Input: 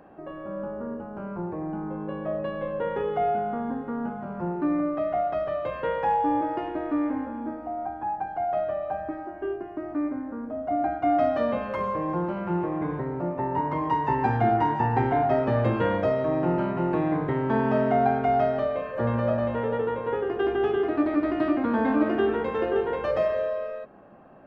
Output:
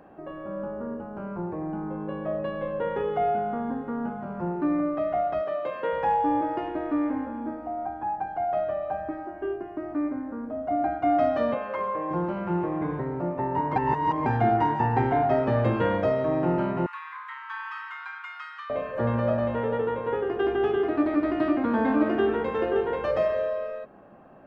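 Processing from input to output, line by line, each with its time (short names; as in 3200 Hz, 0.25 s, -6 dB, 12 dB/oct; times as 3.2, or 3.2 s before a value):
5.41–5.93 Chebyshev high-pass 270 Hz
11.54–12.11 tone controls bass -14 dB, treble -12 dB
13.76–14.26 reverse
16.86–18.7 steep high-pass 980 Hz 96 dB/oct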